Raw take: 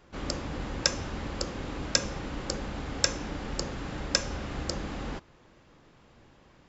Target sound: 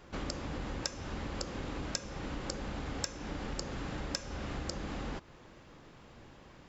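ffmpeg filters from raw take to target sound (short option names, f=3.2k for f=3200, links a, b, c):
-af "acompressor=threshold=-39dB:ratio=4,volume=3dB"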